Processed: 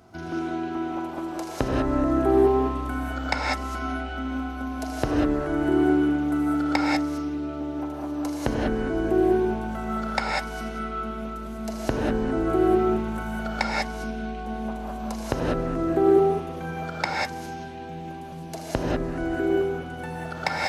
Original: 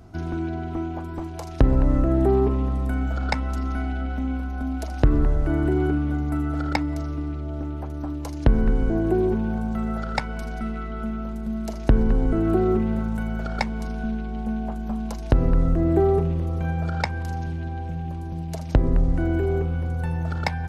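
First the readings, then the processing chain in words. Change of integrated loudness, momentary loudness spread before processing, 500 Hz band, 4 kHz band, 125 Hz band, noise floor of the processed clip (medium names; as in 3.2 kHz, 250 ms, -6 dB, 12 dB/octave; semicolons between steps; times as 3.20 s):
-1.0 dB, 10 LU, +2.0 dB, +5.0 dB, -9.5 dB, -36 dBFS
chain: high-pass 100 Hz 6 dB/octave; bass shelf 250 Hz -9.5 dB; gated-style reverb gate 220 ms rising, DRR -3 dB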